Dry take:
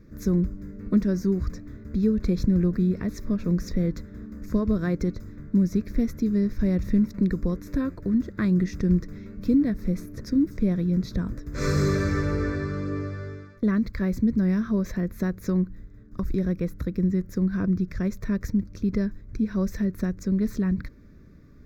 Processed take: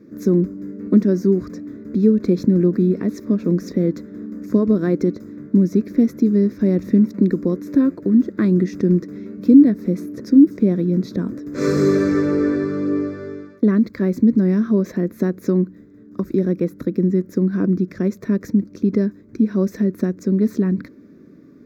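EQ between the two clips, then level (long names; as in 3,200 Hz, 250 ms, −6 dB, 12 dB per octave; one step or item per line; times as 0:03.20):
Bessel high-pass filter 220 Hz, order 2
parametric band 300 Hz +13 dB 1.8 octaves
+1.0 dB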